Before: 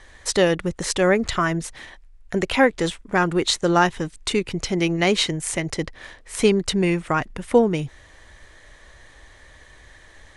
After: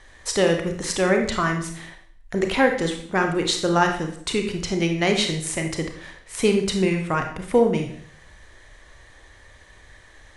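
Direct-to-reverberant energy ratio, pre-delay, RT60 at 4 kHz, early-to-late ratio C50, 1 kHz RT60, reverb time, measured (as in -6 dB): 3.5 dB, 28 ms, 0.55 s, 6.5 dB, 0.60 s, 0.60 s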